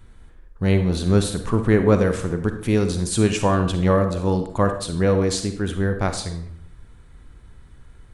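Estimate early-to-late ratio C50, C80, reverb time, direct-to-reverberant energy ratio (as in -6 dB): 8.0 dB, 12.0 dB, 0.65 s, 7.0 dB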